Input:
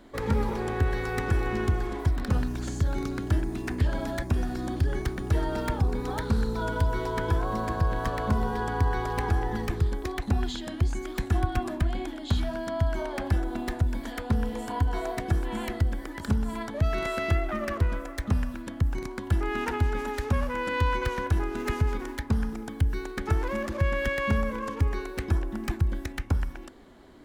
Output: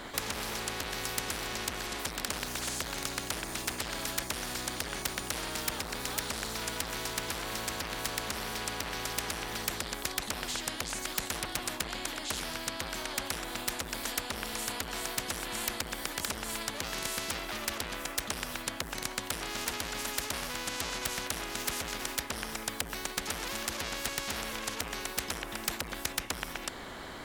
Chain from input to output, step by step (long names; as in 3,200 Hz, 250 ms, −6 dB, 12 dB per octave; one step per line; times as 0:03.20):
harmonic generator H 5 −8 dB, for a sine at −13 dBFS
every bin compressed towards the loudest bin 4 to 1
level +1.5 dB